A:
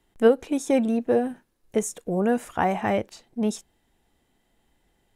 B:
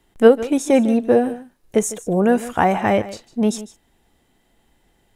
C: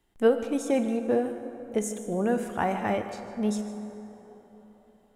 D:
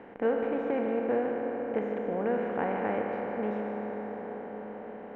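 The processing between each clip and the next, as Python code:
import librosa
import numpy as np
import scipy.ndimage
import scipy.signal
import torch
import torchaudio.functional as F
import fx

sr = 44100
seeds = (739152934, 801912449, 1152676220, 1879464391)

y1 = x + 10.0 ** (-16.0 / 20.0) * np.pad(x, (int(152 * sr / 1000.0), 0))[:len(x)]
y1 = y1 * librosa.db_to_amplitude(6.5)
y2 = fx.comb_fb(y1, sr, f0_hz=70.0, decay_s=1.9, harmonics='all', damping=0.0, mix_pct=60)
y2 = fx.rev_plate(y2, sr, seeds[0], rt60_s=4.2, hf_ratio=0.4, predelay_ms=0, drr_db=9.5)
y2 = y2 * librosa.db_to_amplitude(-3.0)
y3 = fx.bin_compress(y2, sr, power=0.4)
y3 = scipy.signal.sosfilt(scipy.signal.butter(4, 2400.0, 'lowpass', fs=sr, output='sos'), y3)
y3 = fx.low_shelf(y3, sr, hz=120.0, db=-8.5)
y3 = y3 * librosa.db_to_amplitude(-8.0)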